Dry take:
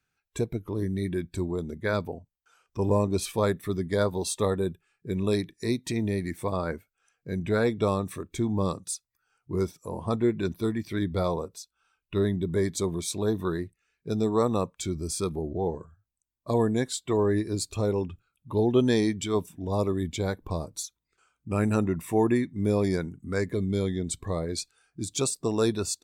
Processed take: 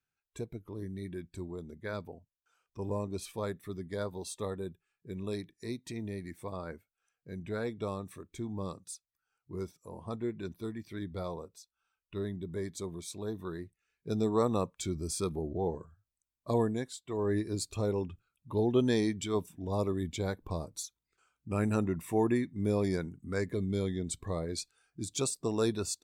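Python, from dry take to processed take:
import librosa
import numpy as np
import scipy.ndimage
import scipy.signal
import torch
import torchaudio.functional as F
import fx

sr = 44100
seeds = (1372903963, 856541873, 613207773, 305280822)

y = fx.gain(x, sr, db=fx.line((13.47, -11.0), (14.13, -4.0), (16.58, -4.0), (17.03, -14.0), (17.32, -5.0)))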